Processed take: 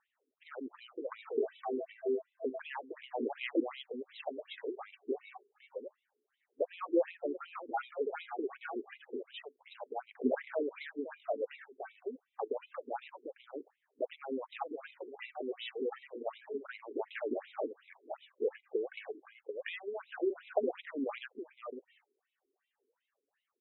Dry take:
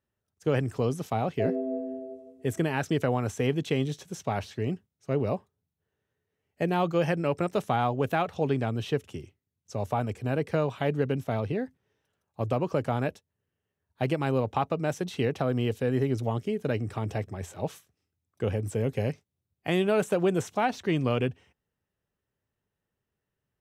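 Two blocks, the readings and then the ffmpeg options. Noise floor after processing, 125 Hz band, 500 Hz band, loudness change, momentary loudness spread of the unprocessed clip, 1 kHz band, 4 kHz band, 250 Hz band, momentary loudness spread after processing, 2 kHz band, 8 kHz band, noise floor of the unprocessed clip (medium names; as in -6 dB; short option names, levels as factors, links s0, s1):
under -85 dBFS, under -40 dB, -8.0 dB, -10.5 dB, 9 LU, -11.0 dB, -9.0 dB, -11.0 dB, 13 LU, -9.0 dB, under -30 dB, under -85 dBFS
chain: -af "acompressor=threshold=0.0178:ratio=12,volume=31.6,asoftclip=hard,volume=0.0316,aecho=1:1:516:0.531,aphaser=in_gain=1:out_gain=1:delay=2.7:decay=0.57:speed=0.29:type=sinusoidal,afftfilt=real='re*between(b*sr/1024,320*pow(2900/320,0.5+0.5*sin(2*PI*2.7*pts/sr))/1.41,320*pow(2900/320,0.5+0.5*sin(2*PI*2.7*pts/sr))*1.41)':imag='im*between(b*sr/1024,320*pow(2900/320,0.5+0.5*sin(2*PI*2.7*pts/sr))/1.41,320*pow(2900/320,0.5+0.5*sin(2*PI*2.7*pts/sr))*1.41)':win_size=1024:overlap=0.75,volume=2.11"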